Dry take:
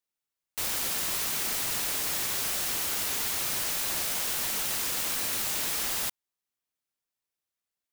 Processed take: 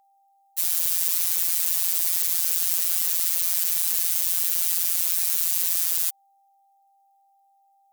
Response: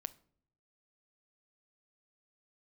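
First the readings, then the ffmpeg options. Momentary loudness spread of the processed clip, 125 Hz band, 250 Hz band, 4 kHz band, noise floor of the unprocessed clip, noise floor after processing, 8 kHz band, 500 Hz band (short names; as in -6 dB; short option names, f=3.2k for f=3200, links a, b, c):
1 LU, under -10 dB, under -10 dB, -1.0 dB, under -85 dBFS, -63 dBFS, +4.5 dB, under -10 dB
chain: -af "afftfilt=real='hypot(re,im)*cos(PI*b)':imag='0':win_size=1024:overlap=0.75,aeval=exprs='val(0)+0.00224*sin(2*PI*790*n/s)':c=same,crystalizer=i=5.5:c=0,volume=-8.5dB"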